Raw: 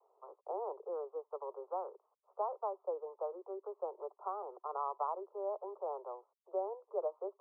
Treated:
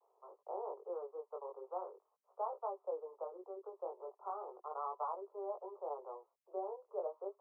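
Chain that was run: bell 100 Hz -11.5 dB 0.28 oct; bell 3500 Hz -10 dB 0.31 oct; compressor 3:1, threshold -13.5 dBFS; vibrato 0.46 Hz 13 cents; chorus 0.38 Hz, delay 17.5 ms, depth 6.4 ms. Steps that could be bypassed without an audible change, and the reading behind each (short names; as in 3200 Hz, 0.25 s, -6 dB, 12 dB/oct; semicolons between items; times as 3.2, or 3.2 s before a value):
bell 100 Hz: input band starts at 320 Hz; bell 3500 Hz: input band ends at 1400 Hz; compressor, threshold -13.5 dBFS: input peak -24.5 dBFS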